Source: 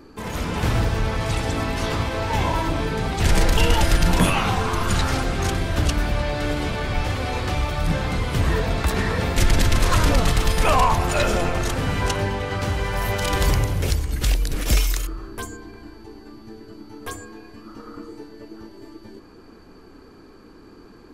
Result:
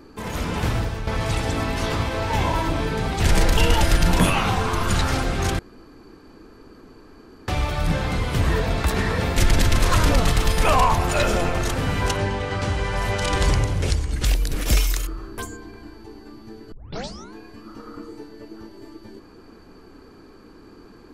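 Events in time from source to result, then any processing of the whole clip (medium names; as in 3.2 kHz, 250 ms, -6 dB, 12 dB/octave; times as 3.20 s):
0.54–1.07 s: fade out, to -9 dB
5.59–7.48 s: room tone
12.17–14.25 s: low-pass 9.6 kHz 24 dB/octave
16.72 s: tape start 0.62 s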